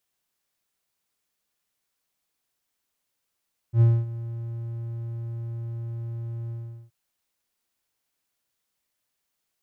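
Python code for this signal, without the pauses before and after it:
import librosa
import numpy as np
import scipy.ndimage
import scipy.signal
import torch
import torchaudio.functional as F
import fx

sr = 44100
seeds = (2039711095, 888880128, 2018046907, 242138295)

y = fx.adsr_tone(sr, wave='triangle', hz=116.0, attack_ms=80.0, decay_ms=242.0, sustain_db=-17.5, held_s=2.77, release_ms=405.0, level_db=-10.5)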